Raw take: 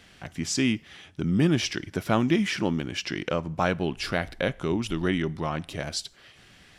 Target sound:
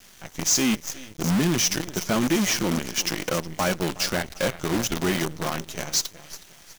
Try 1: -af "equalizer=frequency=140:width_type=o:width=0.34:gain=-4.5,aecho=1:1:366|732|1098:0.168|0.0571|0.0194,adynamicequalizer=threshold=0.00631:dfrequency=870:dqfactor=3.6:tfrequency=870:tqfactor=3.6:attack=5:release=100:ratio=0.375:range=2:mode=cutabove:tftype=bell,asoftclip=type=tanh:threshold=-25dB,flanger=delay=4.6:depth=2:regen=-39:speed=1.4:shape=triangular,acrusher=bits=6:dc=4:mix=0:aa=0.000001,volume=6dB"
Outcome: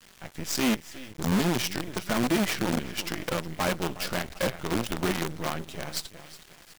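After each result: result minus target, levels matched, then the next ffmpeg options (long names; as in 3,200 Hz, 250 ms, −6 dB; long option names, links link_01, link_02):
8,000 Hz band −6.5 dB; soft clipping: distortion +4 dB
-af "equalizer=frequency=140:width_type=o:width=0.34:gain=-4.5,aecho=1:1:366|732|1098:0.168|0.0571|0.0194,adynamicequalizer=threshold=0.00631:dfrequency=870:dqfactor=3.6:tfrequency=870:tqfactor=3.6:attack=5:release=100:ratio=0.375:range=2:mode=cutabove:tftype=bell,lowpass=frequency=6400:width_type=q:width=7.8,asoftclip=type=tanh:threshold=-25dB,flanger=delay=4.6:depth=2:regen=-39:speed=1.4:shape=triangular,acrusher=bits=6:dc=4:mix=0:aa=0.000001,volume=6dB"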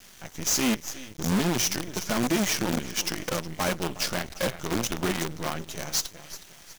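soft clipping: distortion +6 dB
-af "equalizer=frequency=140:width_type=o:width=0.34:gain=-4.5,aecho=1:1:366|732|1098:0.168|0.0571|0.0194,adynamicequalizer=threshold=0.00631:dfrequency=870:dqfactor=3.6:tfrequency=870:tqfactor=3.6:attack=5:release=100:ratio=0.375:range=2:mode=cutabove:tftype=bell,lowpass=frequency=6400:width_type=q:width=7.8,asoftclip=type=tanh:threshold=-18dB,flanger=delay=4.6:depth=2:regen=-39:speed=1.4:shape=triangular,acrusher=bits=6:dc=4:mix=0:aa=0.000001,volume=6dB"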